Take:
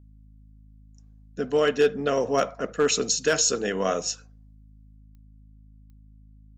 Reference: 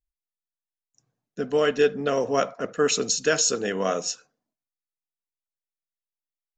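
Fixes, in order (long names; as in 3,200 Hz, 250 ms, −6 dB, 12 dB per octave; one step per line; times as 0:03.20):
clipped peaks rebuilt −12.5 dBFS
click removal
hum removal 52.6 Hz, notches 5
level correction +5 dB, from 0:04.96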